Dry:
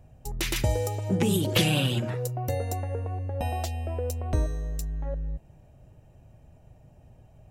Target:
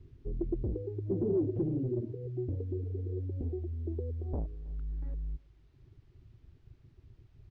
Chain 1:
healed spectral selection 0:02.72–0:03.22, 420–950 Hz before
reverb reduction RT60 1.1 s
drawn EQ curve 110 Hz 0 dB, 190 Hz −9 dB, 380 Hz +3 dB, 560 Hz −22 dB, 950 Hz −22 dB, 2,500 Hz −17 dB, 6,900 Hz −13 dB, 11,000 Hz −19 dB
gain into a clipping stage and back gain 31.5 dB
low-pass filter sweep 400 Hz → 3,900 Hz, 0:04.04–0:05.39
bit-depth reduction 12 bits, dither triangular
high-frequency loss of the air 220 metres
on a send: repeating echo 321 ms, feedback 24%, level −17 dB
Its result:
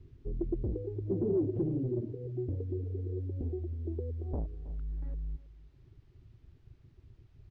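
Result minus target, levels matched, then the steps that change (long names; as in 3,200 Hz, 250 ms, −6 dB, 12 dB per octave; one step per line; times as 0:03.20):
echo-to-direct +8 dB
change: repeating echo 321 ms, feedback 24%, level −25 dB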